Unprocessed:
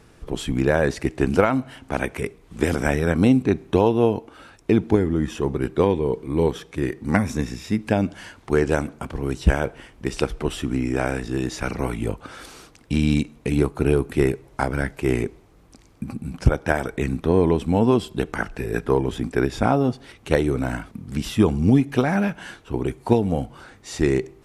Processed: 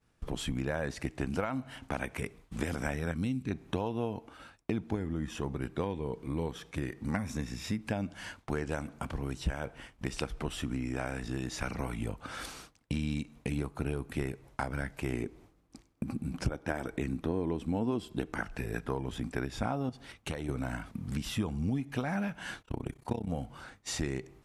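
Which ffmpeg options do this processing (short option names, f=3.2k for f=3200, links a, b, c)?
-filter_complex "[0:a]asettb=1/sr,asplit=3[a][b][c];[a]atrim=end=3.114[d];[b]atrim=start=3.11:end=3.51,asetpts=PTS-STARTPTS,afade=t=in:d=0.004:c=qsin,afade=t=out:st=0.396:d=0.004:c=qsin,equalizer=f=720:t=o:w=1.7:g=-13[e];[c]atrim=start=3.506[f];[d][e]acrossfade=d=0.004:c1=hsin:c2=qsin[g];[g][f]acrossfade=d=0.004:c1=qsin:c2=hsin,asettb=1/sr,asplit=3[h][i][j];[h]atrim=end=15.134[k];[i]atrim=start=15.13:end=18.4,asetpts=PTS-STARTPTS,afade=t=in:d=0.004:c=qsin,afade=t=out:st=3.266:d=0.004:c=qsin,equalizer=f=330:w=1.5:g=7.5[l];[j]atrim=start=18.396[m];[k][l]acrossfade=d=0.004:c1=hsin:c2=qsin[n];[n][m]acrossfade=d=0.004:c1=qsin:c2=hsin,asettb=1/sr,asplit=3[o][p][q];[o]atrim=end=19.894[r];[p]atrim=start=19.89:end=20.49,asetpts=PTS-STARTPTS,afade=t=in:d=0.004:c=qsin,afade=t=out:st=0.596:d=0.004:c=qsin,acompressor=threshold=-26dB:ratio=6:attack=3.2:release=140:knee=1:detection=peak[s];[q]atrim=start=20.486[t];[r][s]acrossfade=d=0.004:c1=hsin:c2=qsin[u];[u][t]acrossfade=d=0.004:c1=qsin:c2=hsin,asettb=1/sr,asplit=3[v][w][x];[v]atrim=end=22.624[y];[w]atrim=start=22.62:end=23.29,asetpts=PTS-STARTPTS,afade=t=in:d=0.004:c=qsin,afade=t=out:st=0.666:d=0.004:c=qsin,tremolo=f=32:d=0.947[z];[x]atrim=start=23.286[aa];[y][z]acrossfade=d=0.004:c1=hsin:c2=qsin[ab];[ab][aa]acrossfade=d=0.004:c1=qsin:c2=hsin,agate=range=-33dB:threshold=-38dB:ratio=3:detection=peak,equalizer=f=390:w=2.2:g=-6.5,acompressor=threshold=-36dB:ratio=3,volume=1.5dB"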